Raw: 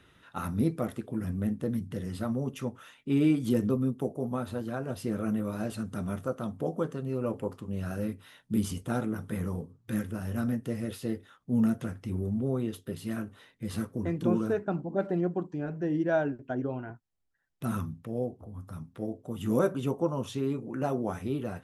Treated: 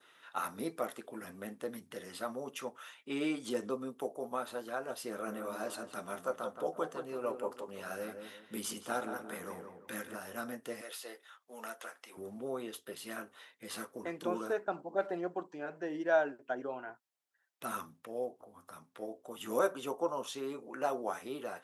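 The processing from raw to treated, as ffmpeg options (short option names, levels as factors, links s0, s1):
-filter_complex "[0:a]asettb=1/sr,asplit=3[s0][s1][s2];[s0]atrim=end=3.084[s3];[s1]atrim=start=3.08:end=3.9,asetpts=PTS-STARTPTS,afade=t=in:d=0.004:c=qsin,afade=t=out:st=0.816:d=0.004:c=qsin,lowpass=f=9700:w=0.5412,lowpass=f=9700:w=1.3066[s4];[s2]atrim=start=3.896[s5];[s3][s4]acrossfade=d=0.004:c1=hsin:c2=qsin[s6];[s6][s5]acrossfade=d=0.004:c1=qsin:c2=hsin,asettb=1/sr,asplit=3[s7][s8][s9];[s7]atrim=end=5.104[s10];[s8]atrim=start=5.1:end=10.16,asetpts=PTS-STARTPTS,afade=t=in:d=0.004:c=qsin,afade=t=out:st=5.056:d=0.004:c=qsin,asplit=2[s11][s12];[s12]adelay=172,lowpass=f=2000:p=1,volume=0.473,asplit=2[s13][s14];[s14]adelay=172,lowpass=f=2000:p=1,volume=0.35,asplit=2[s15][s16];[s16]adelay=172,lowpass=f=2000:p=1,volume=0.35,asplit=2[s17][s18];[s18]adelay=172,lowpass=f=2000:p=1,volume=0.35[s19];[s11][s13][s15][s17][s19]amix=inputs=5:normalize=0,atrim=end_sample=223146[s20];[s9]atrim=start=10.156[s21];[s10][s20]acrossfade=d=0.004:c1=hsin:c2=qsin[s22];[s22][s21]acrossfade=d=0.004:c1=qsin:c2=hsin,asettb=1/sr,asplit=3[s23][s24][s25];[s23]atrim=end=10.814[s26];[s24]atrim=start=10.81:end=12.17,asetpts=PTS-STARTPTS,afade=t=in:d=0.004:c=qsin,afade=t=out:st=1.356:d=0.004:c=qsin,highpass=610[s27];[s25]atrim=start=12.166[s28];[s26][s27]acrossfade=d=0.004:c1=hsin:c2=qsin[s29];[s29][s28]acrossfade=d=0.004:c1=qsin:c2=hsin,highpass=600,adynamicequalizer=threshold=0.00178:dfrequency=2400:dqfactor=1.5:tfrequency=2400:tqfactor=1.5:attack=5:release=100:ratio=0.375:range=2.5:mode=cutabove:tftype=bell,volume=1.19"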